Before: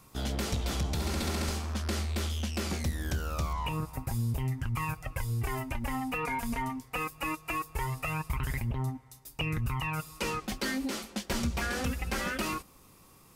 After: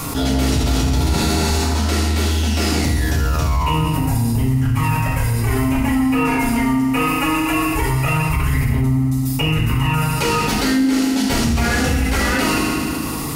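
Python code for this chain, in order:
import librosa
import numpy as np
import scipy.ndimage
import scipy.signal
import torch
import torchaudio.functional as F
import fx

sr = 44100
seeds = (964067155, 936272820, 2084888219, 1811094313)

y = fx.rev_fdn(x, sr, rt60_s=1.2, lf_ratio=1.35, hf_ratio=0.95, size_ms=21.0, drr_db=-7.0)
y = fx.env_flatten(y, sr, amount_pct=70)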